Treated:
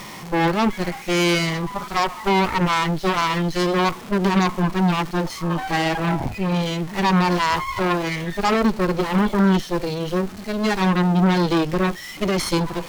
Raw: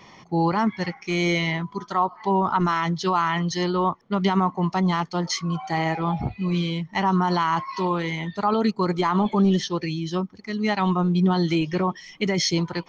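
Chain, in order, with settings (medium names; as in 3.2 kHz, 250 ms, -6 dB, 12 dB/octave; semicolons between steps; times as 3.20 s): jump at every zero crossing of -27.5 dBFS; harmonic-percussive split percussive -15 dB; Chebyshev shaper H 8 -11 dB, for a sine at -9.5 dBFS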